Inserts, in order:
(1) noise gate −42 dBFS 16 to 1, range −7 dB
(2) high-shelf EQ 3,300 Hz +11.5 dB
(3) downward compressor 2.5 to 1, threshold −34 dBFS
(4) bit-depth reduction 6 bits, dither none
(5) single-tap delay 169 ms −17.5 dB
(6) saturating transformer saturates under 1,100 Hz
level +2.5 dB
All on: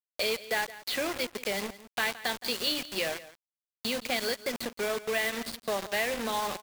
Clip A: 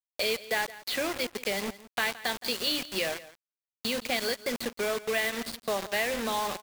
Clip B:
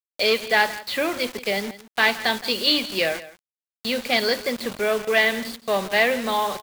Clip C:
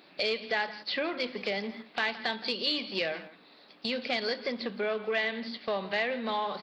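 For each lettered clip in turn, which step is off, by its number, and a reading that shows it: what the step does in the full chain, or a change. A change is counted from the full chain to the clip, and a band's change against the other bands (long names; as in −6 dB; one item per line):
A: 6, change in crest factor +1.5 dB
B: 3, average gain reduction 7.0 dB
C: 4, distortion level −8 dB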